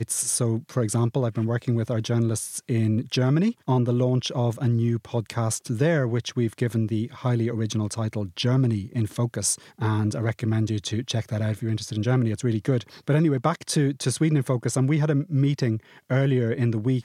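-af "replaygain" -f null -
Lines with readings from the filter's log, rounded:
track_gain = +6.4 dB
track_peak = 0.283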